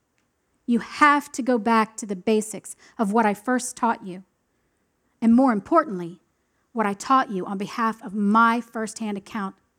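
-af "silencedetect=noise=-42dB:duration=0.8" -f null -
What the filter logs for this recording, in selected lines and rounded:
silence_start: 4.21
silence_end: 5.22 | silence_duration: 1.01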